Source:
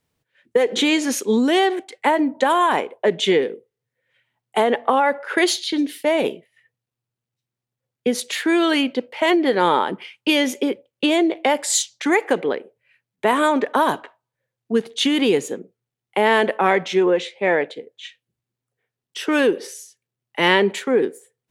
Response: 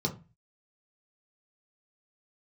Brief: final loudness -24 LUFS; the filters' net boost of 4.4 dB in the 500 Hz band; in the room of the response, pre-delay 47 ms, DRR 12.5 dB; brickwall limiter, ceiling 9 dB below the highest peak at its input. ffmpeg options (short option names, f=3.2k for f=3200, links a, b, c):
-filter_complex "[0:a]equalizer=f=500:t=o:g=5.5,alimiter=limit=-9.5dB:level=0:latency=1,asplit=2[a][b];[1:a]atrim=start_sample=2205,adelay=47[c];[b][c]afir=irnorm=-1:irlink=0,volume=-18dB[d];[a][d]amix=inputs=2:normalize=0,volume=-5dB"